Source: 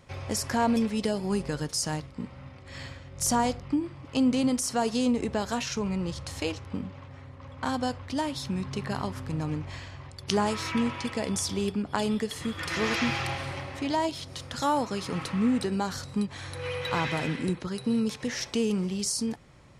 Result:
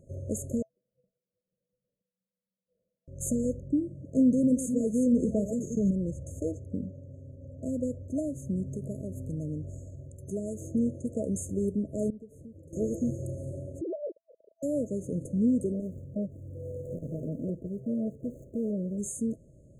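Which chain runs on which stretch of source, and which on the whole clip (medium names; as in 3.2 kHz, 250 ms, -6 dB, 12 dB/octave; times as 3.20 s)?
0.62–3.08 s: distance through air 490 m + inharmonic resonator 200 Hz, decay 0.28 s, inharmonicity 0.002 + frequency inversion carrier 3.8 kHz
3.87–5.91 s: chunks repeated in reverse 314 ms, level -9 dB + peaking EQ 190 Hz +7 dB 0.39 oct
8.66–10.61 s: treble shelf 9.9 kHz +10 dB + compression 2.5:1, threshold -31 dBFS
12.10–12.73 s: peaking EQ 7.1 kHz -12 dB 2.9 oct + compression, threshold -37 dBFS + gate -39 dBFS, range -6 dB
13.81–14.63 s: formants replaced by sine waves + compression 2:1, threshold -30 dBFS
15.72–18.98 s: median filter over 41 samples + transformer saturation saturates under 570 Hz
whole clip: FFT band-reject 660–6300 Hz; treble shelf 5.4 kHz -8 dB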